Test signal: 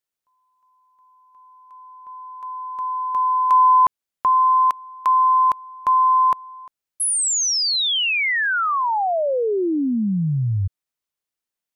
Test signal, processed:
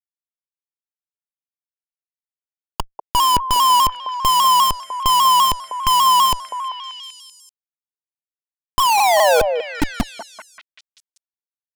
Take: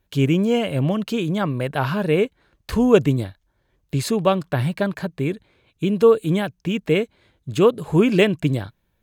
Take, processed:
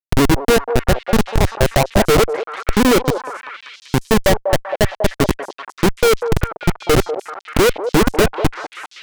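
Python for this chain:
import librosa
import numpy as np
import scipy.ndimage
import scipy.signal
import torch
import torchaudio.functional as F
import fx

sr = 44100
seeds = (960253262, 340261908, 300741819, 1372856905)

p1 = fx.weighting(x, sr, curve='A')
p2 = fx.env_lowpass_down(p1, sr, base_hz=2300.0, full_db=-14.5)
p3 = scipy.signal.sosfilt(scipy.signal.cheby1(2, 1.0, [940.0, 2900.0], 'bandstop', fs=sr, output='sos'), p2)
p4 = fx.tilt_shelf(p3, sr, db=4.5, hz=1200.0)
p5 = fx.hum_notches(p4, sr, base_hz=60, count=5)
p6 = fx.transient(p5, sr, attack_db=9, sustain_db=-6)
p7 = fx.rider(p6, sr, range_db=3, speed_s=2.0)
p8 = p6 + F.gain(torch.from_numpy(p7), -2.0).numpy()
p9 = fx.schmitt(p8, sr, flips_db=-12.5)
p10 = p9 + fx.echo_stepped(p9, sr, ms=194, hz=660.0, octaves=0.7, feedback_pct=70, wet_db=-4, dry=0)
p11 = fx.vibrato_shape(p10, sr, shape='saw_down', rate_hz=5.0, depth_cents=100.0)
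y = F.gain(torch.from_numpy(p11), 3.0).numpy()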